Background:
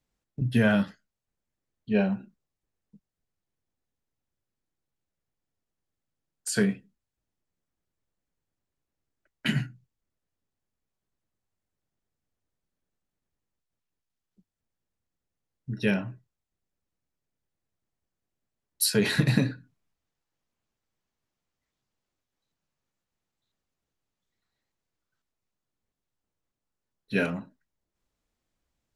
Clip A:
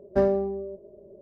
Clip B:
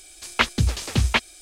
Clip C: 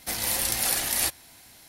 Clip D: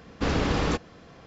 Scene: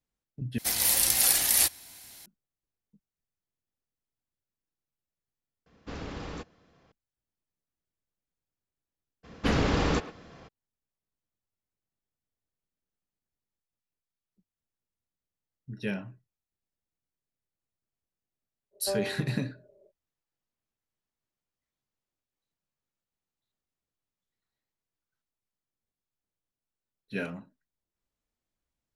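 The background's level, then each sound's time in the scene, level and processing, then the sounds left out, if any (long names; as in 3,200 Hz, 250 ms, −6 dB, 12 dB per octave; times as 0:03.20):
background −7.5 dB
0:00.58: overwrite with C −4 dB + high-shelf EQ 2,600 Hz +7.5 dB
0:05.66: overwrite with D −14 dB
0:09.23: mix in D −1 dB, fades 0.02 s + far-end echo of a speakerphone 110 ms, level −14 dB
0:18.71: mix in A −10.5 dB, fades 0.05 s + low shelf with overshoot 390 Hz −10 dB, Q 1.5
not used: B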